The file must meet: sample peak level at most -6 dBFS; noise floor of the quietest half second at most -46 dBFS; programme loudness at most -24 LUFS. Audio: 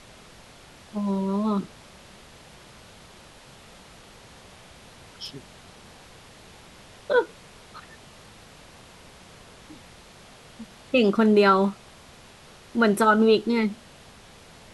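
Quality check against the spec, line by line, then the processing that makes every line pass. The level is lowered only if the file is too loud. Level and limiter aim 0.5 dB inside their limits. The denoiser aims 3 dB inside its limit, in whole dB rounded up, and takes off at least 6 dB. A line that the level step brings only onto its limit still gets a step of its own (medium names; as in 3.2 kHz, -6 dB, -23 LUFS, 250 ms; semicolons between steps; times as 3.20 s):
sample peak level -7.5 dBFS: pass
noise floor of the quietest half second -49 dBFS: pass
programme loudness -22.5 LUFS: fail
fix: trim -2 dB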